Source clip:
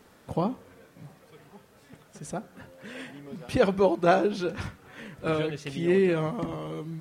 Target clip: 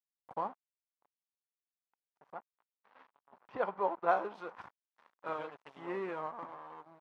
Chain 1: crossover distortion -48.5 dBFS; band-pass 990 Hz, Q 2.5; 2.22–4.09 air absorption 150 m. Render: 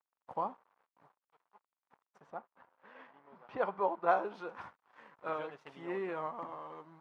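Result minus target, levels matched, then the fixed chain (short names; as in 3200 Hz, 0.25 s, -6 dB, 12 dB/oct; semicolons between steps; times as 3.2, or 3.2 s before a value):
crossover distortion: distortion -9 dB
crossover distortion -37.5 dBFS; band-pass 990 Hz, Q 2.5; 2.22–4.09 air absorption 150 m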